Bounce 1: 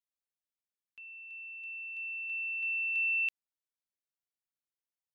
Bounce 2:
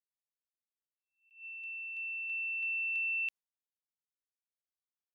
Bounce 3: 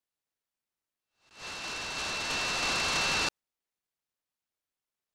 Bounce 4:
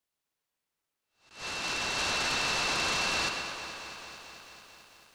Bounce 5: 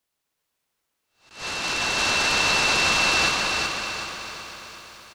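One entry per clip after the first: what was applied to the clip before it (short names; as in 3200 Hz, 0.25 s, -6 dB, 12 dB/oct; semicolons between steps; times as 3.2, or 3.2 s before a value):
gate with hold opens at -42 dBFS; compressor, threshold -32 dBFS, peak gain reduction 3.5 dB; attack slew limiter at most 150 dB/s
noise-modulated delay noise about 1400 Hz, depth 0.072 ms; gain +5 dB
limiter -31.5 dBFS, peak gain reduction 7.5 dB; tape echo 0.125 s, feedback 81%, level -4 dB, low-pass 4600 Hz; lo-fi delay 0.221 s, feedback 80%, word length 10-bit, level -13 dB; gain +3.5 dB
feedback echo 0.375 s, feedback 40%, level -3.5 dB; gain +6.5 dB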